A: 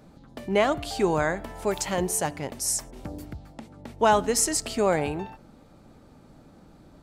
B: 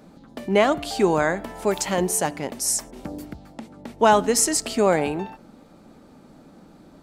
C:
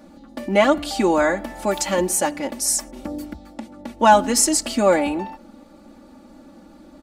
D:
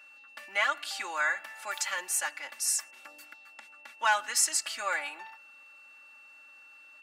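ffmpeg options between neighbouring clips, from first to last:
ffmpeg -i in.wav -af "lowshelf=frequency=150:width_type=q:width=1.5:gain=-6.5,volume=3.5dB" out.wav
ffmpeg -i in.wav -af "aecho=1:1:3.5:0.88" out.wav
ffmpeg -i in.wav -af "asoftclip=type=hard:threshold=-4.5dB,aeval=exprs='val(0)+0.00501*sin(2*PI*2700*n/s)':channel_layout=same,highpass=frequency=1500:width_type=q:width=1.9,volume=-8dB" out.wav

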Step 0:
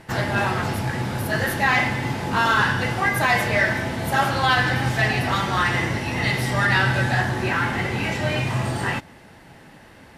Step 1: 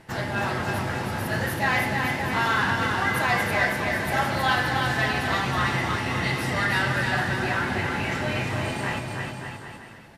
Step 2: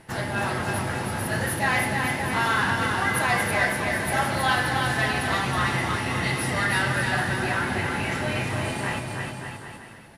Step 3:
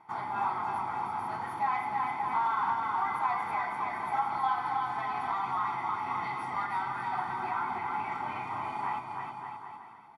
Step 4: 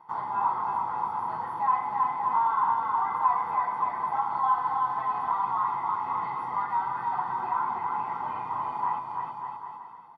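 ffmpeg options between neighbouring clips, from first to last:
ffmpeg -i in.wav -af "bandreject=frequency=60:width_type=h:width=6,bandreject=frequency=120:width_type=h:width=6,aecho=1:1:320|576|780.8|944.6|1076:0.631|0.398|0.251|0.158|0.1,volume=-5dB" out.wav
ffmpeg -i in.wav -af "equalizer=frequency=10000:width=5.7:gain=14" out.wav
ffmpeg -i in.wav -af "aecho=1:1:0.9:0.93,alimiter=limit=-14dB:level=0:latency=1:release=262,bandpass=frequency=870:width_type=q:width=2.6:csg=0" out.wav
ffmpeg -i in.wav -filter_complex "[0:a]bandreject=frequency=2300:width=5.5,acrossover=split=2900[link_01][link_02];[link_02]acompressor=threshold=-60dB:ratio=4:attack=1:release=60[link_03];[link_01][link_03]amix=inputs=2:normalize=0,equalizer=frequency=160:width_type=o:width=0.33:gain=5,equalizer=frequency=500:width_type=o:width=0.33:gain=9,equalizer=frequency=1000:width_type=o:width=0.33:gain=12,equalizer=frequency=8000:width_type=o:width=0.33:gain=-9,volume=-3dB" out.wav

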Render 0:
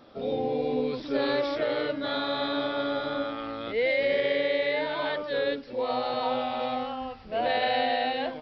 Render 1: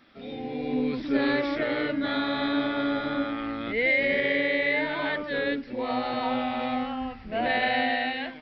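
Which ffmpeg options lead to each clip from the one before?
ffmpeg -i in.wav -filter_complex "[0:a]equalizer=frequency=125:width_type=o:width=1:gain=-4,equalizer=frequency=250:width_type=o:width=1:gain=3,equalizer=frequency=500:width_type=o:width=1:gain=-10,equalizer=frequency=1000:width_type=o:width=1:gain=-4,equalizer=frequency=2000:width_type=o:width=1:gain=11,acrossover=split=990[link_01][link_02];[link_01]dynaudnorm=framelen=190:gausssize=7:maxgain=11dB[link_03];[link_03][link_02]amix=inputs=2:normalize=0,volume=-4dB" out.wav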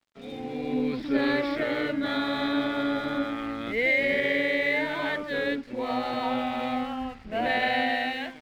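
ffmpeg -i in.wav -af "aeval=exprs='sgn(val(0))*max(abs(val(0))-0.00251,0)':channel_layout=same" out.wav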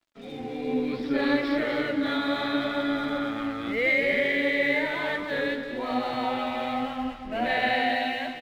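ffmpeg -i in.wav -af "flanger=delay=2.9:depth=8.5:regen=49:speed=0.69:shape=sinusoidal,aecho=1:1:235|470|705|940:0.355|0.135|0.0512|0.0195,volume=4dB" out.wav

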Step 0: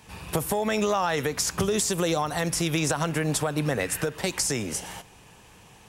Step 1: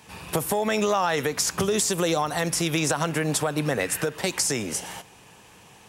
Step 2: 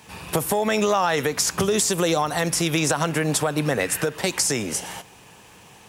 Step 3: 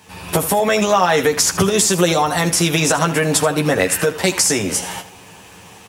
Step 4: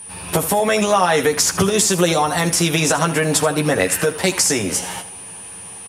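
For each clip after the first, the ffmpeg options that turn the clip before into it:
ffmpeg -i in.wav -af "highpass=frequency=140:poles=1,volume=2dB" out.wav
ffmpeg -i in.wav -af "acrusher=bits=10:mix=0:aa=0.000001,volume=2.5dB" out.wav
ffmpeg -i in.wav -af "dynaudnorm=framelen=140:gausssize=3:maxgain=5.5dB,aecho=1:1:11|80:0.596|0.211" out.wav
ffmpeg -i in.wav -af "aeval=exprs='val(0)+0.0251*sin(2*PI*9400*n/s)':channel_layout=same,aresample=32000,aresample=44100,volume=-1dB" out.wav

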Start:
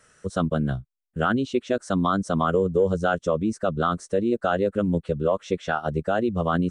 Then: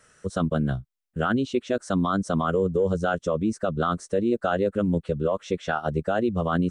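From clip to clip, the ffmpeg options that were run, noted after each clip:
ffmpeg -i in.wav -af "alimiter=limit=-13.5dB:level=0:latency=1:release=20" out.wav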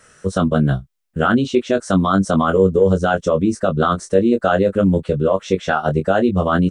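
ffmpeg -i in.wav -filter_complex "[0:a]asplit=2[link_01][link_02];[link_02]adelay=21,volume=-7dB[link_03];[link_01][link_03]amix=inputs=2:normalize=0,volume=7.5dB" out.wav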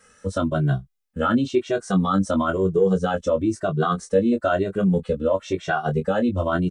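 ffmpeg -i in.wav -filter_complex "[0:a]asplit=2[link_01][link_02];[link_02]adelay=2,afreqshift=1[link_03];[link_01][link_03]amix=inputs=2:normalize=1,volume=-2.5dB" out.wav

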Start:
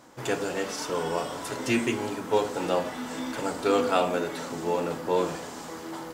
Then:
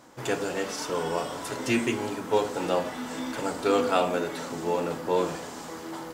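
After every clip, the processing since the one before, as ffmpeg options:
ffmpeg -i in.wav -af anull out.wav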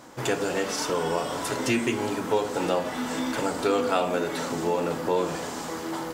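ffmpeg -i in.wav -af "acompressor=threshold=-30dB:ratio=2,volume=5.5dB" out.wav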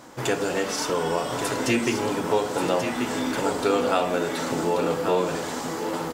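ffmpeg -i in.wav -af "aecho=1:1:1134:0.422,volume=1.5dB" out.wav

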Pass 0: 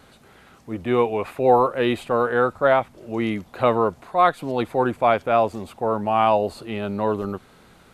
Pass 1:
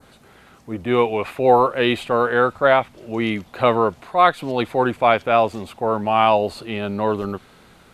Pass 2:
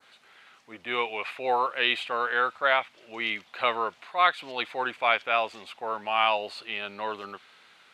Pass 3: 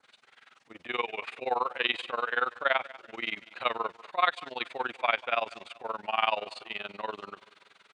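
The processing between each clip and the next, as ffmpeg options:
ffmpeg -i in.wav -af "adynamicequalizer=threshold=0.0141:dfrequency=3000:dqfactor=0.79:tfrequency=3000:tqfactor=0.79:attack=5:release=100:ratio=0.375:range=3:mode=boostabove:tftype=bell,volume=1.5dB" out.wav
ffmpeg -i in.wav -af "bandpass=frequency=2700:width_type=q:width=0.94:csg=0" out.wav
ffmpeg -i in.wav -af "tremolo=f=21:d=0.919,aecho=1:1:192|384|576|768:0.1|0.048|0.023|0.0111,aresample=22050,aresample=44100" out.wav

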